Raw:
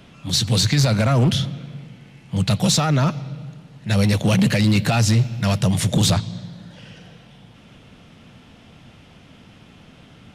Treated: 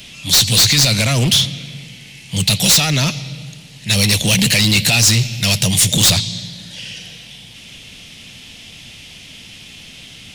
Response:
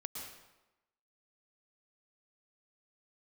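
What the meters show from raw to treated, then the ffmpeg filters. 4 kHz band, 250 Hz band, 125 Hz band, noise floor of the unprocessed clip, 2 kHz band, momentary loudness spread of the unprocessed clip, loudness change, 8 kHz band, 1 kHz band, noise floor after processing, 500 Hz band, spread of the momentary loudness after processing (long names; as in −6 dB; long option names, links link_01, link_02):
+11.5 dB, −0.5 dB, 0.0 dB, −48 dBFS, +9.0 dB, 18 LU, +6.0 dB, +12.5 dB, −1.0 dB, −39 dBFS, −1.0 dB, 19 LU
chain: -af "aexciter=amount=5.4:drive=7.3:freq=2000,acontrast=74,lowshelf=frequency=66:gain=7.5,volume=-6.5dB"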